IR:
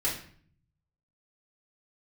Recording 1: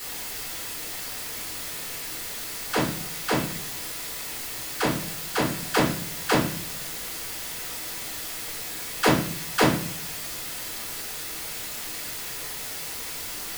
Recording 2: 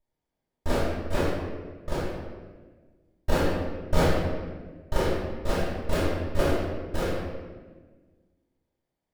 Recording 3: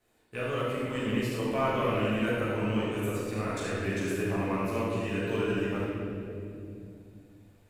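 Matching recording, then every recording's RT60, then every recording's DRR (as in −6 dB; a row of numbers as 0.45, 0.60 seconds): 1; 0.50, 1.4, 2.8 seconds; −7.0, −11.5, −10.0 decibels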